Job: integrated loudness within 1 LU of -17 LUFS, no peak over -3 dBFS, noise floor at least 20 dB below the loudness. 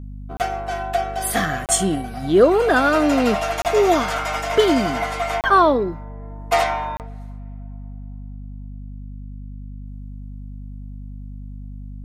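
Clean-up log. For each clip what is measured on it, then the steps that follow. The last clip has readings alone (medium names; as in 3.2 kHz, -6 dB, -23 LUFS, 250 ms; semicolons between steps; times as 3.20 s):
dropouts 5; longest dropout 28 ms; hum 50 Hz; highest harmonic 250 Hz; hum level -31 dBFS; loudness -19.0 LUFS; peak level -2.5 dBFS; loudness target -17.0 LUFS
-> interpolate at 0.37/1.66/3.62/5.41/6.97 s, 28 ms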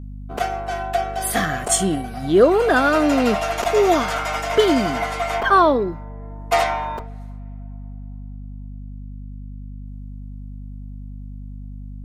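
dropouts 0; hum 50 Hz; highest harmonic 250 Hz; hum level -31 dBFS
-> hum notches 50/100/150/200/250 Hz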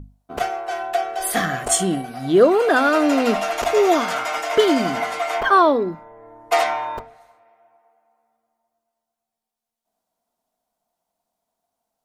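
hum not found; loudness -19.0 LUFS; peak level -3.0 dBFS; loudness target -17.0 LUFS
-> trim +2 dB; peak limiter -3 dBFS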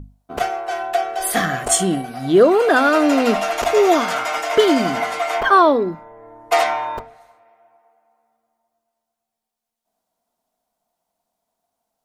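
loudness -17.5 LUFS; peak level -3.0 dBFS; noise floor -82 dBFS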